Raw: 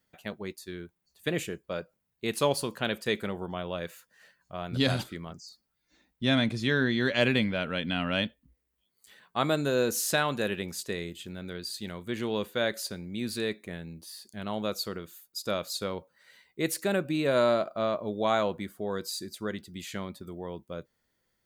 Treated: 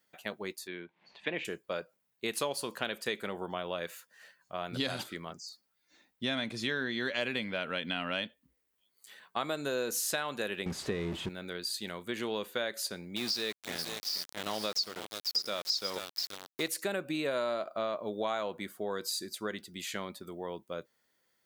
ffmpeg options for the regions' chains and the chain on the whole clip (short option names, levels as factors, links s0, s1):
-filter_complex "[0:a]asettb=1/sr,asplit=3[s0][s1][s2];[s0]atrim=end=0.674[s3];[s1]atrim=start=0.67:end=1.45,asetpts=PTS-STARTPTS,afade=t=in:d=0.004:c=qsin,afade=t=out:st=0.776:d=0.004:c=qsin,highpass=160,equalizer=f=410:t=q:w=4:g=-4,equalizer=f=940:t=q:w=4:g=5,equalizer=f=1300:t=q:w=4:g=-6,equalizer=f=2300:t=q:w=4:g=4,lowpass=f=3400:w=0.5412,lowpass=f=3400:w=1.3066,acompressor=mode=upward:threshold=0.00708:ratio=2.5:attack=3.2:release=140:knee=2.83:detection=peak[s4];[s2]atrim=start=1.446[s5];[s3][s4]acrossfade=d=0.004:c1=hsin:c2=qsin[s6];[s6][s5]acrossfade=d=0.004:c1=qsin:c2=hsin,asettb=1/sr,asplit=3[s7][s8][s9];[s7]atrim=end=10.664[s10];[s8]atrim=start=10.66:end=11.29,asetpts=PTS-STARTPTS,afade=t=in:d=0.004:c=qsin,afade=t=out:st=0.626:d=0.004:c=qsin,aeval=exprs='val(0)+0.5*0.0178*sgn(val(0))':c=same,aemphasis=mode=reproduction:type=riaa[s11];[s9]atrim=start=11.286[s12];[s10][s11]acrossfade=d=0.004:c1=hsin:c2=qsin[s13];[s13][s12]acrossfade=d=0.004:c1=qsin:c2=hsin,asettb=1/sr,asplit=3[s14][s15][s16];[s14]atrim=end=13.164[s17];[s15]atrim=start=13.16:end=16.68,asetpts=PTS-STARTPTS,afade=t=in:d=0.004:c=qsin,afade=t=out:st=3.516:d=0.004:c=qsin,lowpass=f=5300:t=q:w=11,aecho=1:1:482:0.299,atrim=end_sample=155232,aeval=exprs='val(0)*gte(abs(val(0)),0.0168)':c=same[s18];[s16]atrim=start=16.676[s19];[s17][s18]acrossfade=d=0.004:c1=hsin:c2=qsin[s20];[s20][s19]acrossfade=d=0.004:c1=qsin:c2=hsin,highpass=f=430:p=1,acompressor=threshold=0.0224:ratio=4,volume=1.33"